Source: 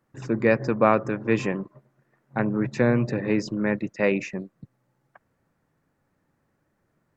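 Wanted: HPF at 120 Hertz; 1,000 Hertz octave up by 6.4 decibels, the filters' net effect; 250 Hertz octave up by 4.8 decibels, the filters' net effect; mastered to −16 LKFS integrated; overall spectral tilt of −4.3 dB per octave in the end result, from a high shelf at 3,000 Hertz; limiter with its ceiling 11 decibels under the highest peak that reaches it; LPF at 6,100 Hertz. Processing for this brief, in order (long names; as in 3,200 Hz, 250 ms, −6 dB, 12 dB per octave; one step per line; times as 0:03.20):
high-pass filter 120 Hz
low-pass filter 6,100 Hz
parametric band 250 Hz +6 dB
parametric band 1,000 Hz +7.5 dB
high-shelf EQ 3,000 Hz +3 dB
level +7.5 dB
brickwall limiter −3 dBFS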